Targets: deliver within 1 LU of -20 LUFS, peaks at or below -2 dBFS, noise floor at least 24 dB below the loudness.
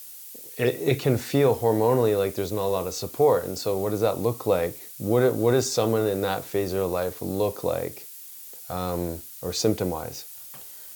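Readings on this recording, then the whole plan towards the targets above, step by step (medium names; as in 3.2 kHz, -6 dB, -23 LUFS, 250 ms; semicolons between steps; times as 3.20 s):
noise floor -42 dBFS; noise floor target -49 dBFS; loudness -25.0 LUFS; peak level -8.5 dBFS; loudness target -20.0 LUFS
-> noise print and reduce 7 dB; trim +5 dB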